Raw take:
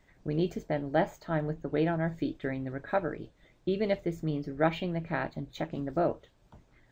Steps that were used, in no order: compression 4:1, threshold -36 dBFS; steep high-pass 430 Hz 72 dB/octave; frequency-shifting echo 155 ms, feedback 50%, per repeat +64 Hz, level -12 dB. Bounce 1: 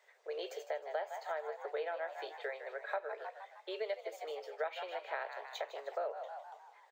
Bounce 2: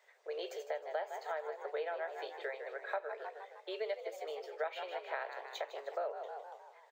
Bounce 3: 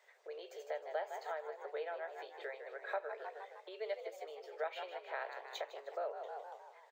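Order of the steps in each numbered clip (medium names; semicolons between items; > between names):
steep high-pass > frequency-shifting echo > compression; frequency-shifting echo > steep high-pass > compression; frequency-shifting echo > compression > steep high-pass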